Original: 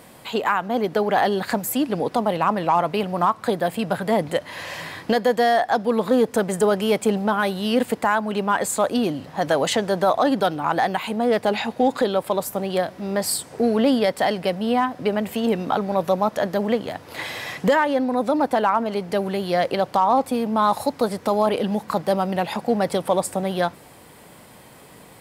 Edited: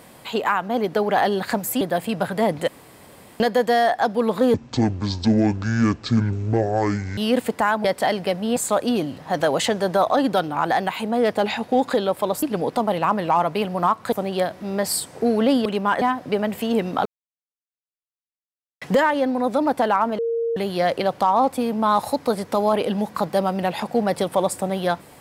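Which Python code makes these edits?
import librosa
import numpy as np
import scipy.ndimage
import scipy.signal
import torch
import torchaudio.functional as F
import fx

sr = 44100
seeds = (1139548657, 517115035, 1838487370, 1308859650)

y = fx.edit(x, sr, fx.move(start_s=1.81, length_s=1.7, to_s=12.5),
    fx.room_tone_fill(start_s=4.38, length_s=0.72),
    fx.speed_span(start_s=6.24, length_s=1.37, speed=0.52),
    fx.swap(start_s=8.28, length_s=0.36, other_s=14.03, other_length_s=0.72),
    fx.silence(start_s=15.79, length_s=1.76),
    fx.bleep(start_s=18.92, length_s=0.38, hz=462.0, db=-20.0), tone=tone)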